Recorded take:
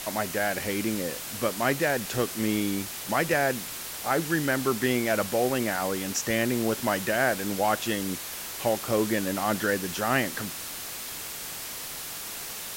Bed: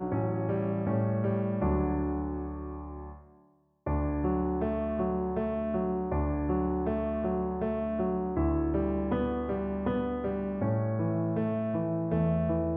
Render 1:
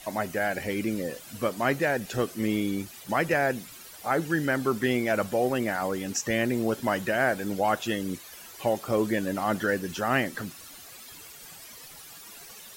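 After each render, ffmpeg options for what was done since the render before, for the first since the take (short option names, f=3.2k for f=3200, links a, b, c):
-af "afftdn=nr=13:nf=-37"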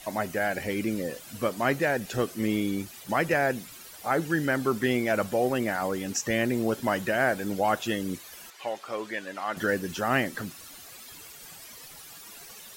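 -filter_complex "[0:a]asettb=1/sr,asplit=3[a][b][c];[a]atrim=end=8.504[d];[b]atrim=start=8.5:end=9.57,asetpts=PTS-STARTPTS,afade=t=in:d=0.004:c=qsin,afade=t=out:st=1.066:d=0.004:c=qsin,bandpass=f=2.1k:t=q:w=0.58[e];[c]atrim=start=9.566[f];[d][e]acrossfade=d=0.004:c1=hsin:c2=qsin[g];[g][f]acrossfade=d=0.004:c1=qsin:c2=hsin"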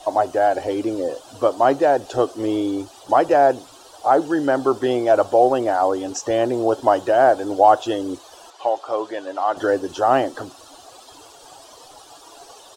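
-af "firequalizer=gain_entry='entry(120,0);entry(200,-14);entry(280,8);entry(470,9);entry(740,15);entry(2100,-10);entry(3100,3);entry(8700,-1);entry(13000,-15)':delay=0.05:min_phase=1"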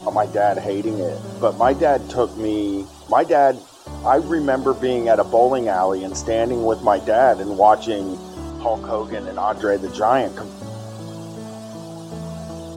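-filter_complex "[1:a]volume=-4dB[a];[0:a][a]amix=inputs=2:normalize=0"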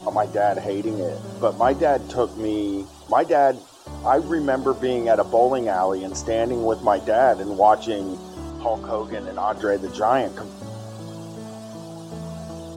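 -af "volume=-2.5dB"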